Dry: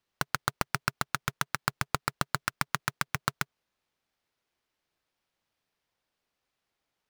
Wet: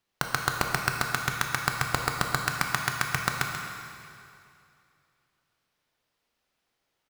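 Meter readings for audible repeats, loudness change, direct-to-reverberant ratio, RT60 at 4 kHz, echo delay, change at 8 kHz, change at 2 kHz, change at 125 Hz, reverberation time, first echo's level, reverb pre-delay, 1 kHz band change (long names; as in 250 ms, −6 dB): 1, +4.0 dB, 1.0 dB, 2.3 s, 136 ms, +4.5 dB, +5.5 dB, +4.0 dB, 2.6 s, −9.0 dB, 8 ms, +4.0 dB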